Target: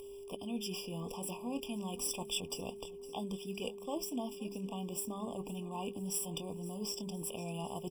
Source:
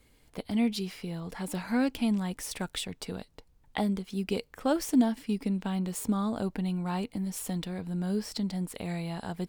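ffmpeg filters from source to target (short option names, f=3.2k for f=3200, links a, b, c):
-filter_complex "[0:a]areverse,acompressor=threshold=-41dB:ratio=4,areverse,asplit=2[a][b];[b]adelay=25,volume=-10dB[c];[a][c]amix=inputs=2:normalize=0,acompressor=mode=upward:threshold=-59dB:ratio=2.5,lowshelf=f=480:g=-7,bandreject=f=50:t=h:w=6,bandreject=f=100:t=h:w=6,bandreject=f=150:t=h:w=6,bandreject=f=200:t=h:w=6,aecho=1:1:615|1230|1845|2460|3075:0.126|0.073|0.0424|0.0246|0.0142,aeval=exprs='val(0)+0.00251*sin(2*PI*400*n/s)':c=same,atempo=1.2,highshelf=f=6.1k:g=7,afftfilt=real='re*eq(mod(floor(b*sr/1024/1200),2),0)':imag='im*eq(mod(floor(b*sr/1024/1200),2),0)':win_size=1024:overlap=0.75,volume=6.5dB"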